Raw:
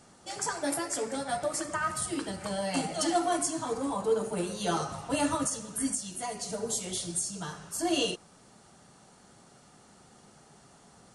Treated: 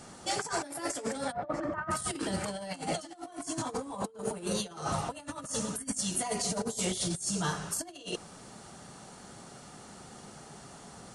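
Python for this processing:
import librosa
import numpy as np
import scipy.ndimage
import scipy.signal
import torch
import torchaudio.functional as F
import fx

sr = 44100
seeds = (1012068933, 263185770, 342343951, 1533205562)

y = fx.lowpass(x, sr, hz=1400.0, slope=12, at=(1.31, 1.9), fade=0.02)
y = fx.over_compress(y, sr, threshold_db=-37.0, ratio=-0.5)
y = F.gain(torch.from_numpy(y), 2.5).numpy()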